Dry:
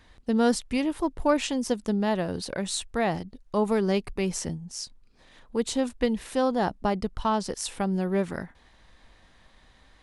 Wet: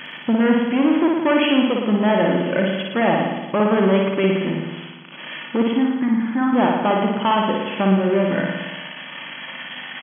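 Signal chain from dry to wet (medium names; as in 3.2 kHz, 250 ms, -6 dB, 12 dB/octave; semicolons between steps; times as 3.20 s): zero-crossing glitches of -24.5 dBFS; hum 50 Hz, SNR 22 dB; comb 3.4 ms, depth 35%; in parallel at +2.5 dB: compression, threshold -30 dBFS, peak gain reduction 15 dB; 5.71–6.53 s: on the sum: static phaser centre 1.2 kHz, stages 4; hard clipper -19.5 dBFS, distortion -10 dB; FFT band-pass 120–3400 Hz; flutter echo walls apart 9.8 m, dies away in 1.2 s; trim +5 dB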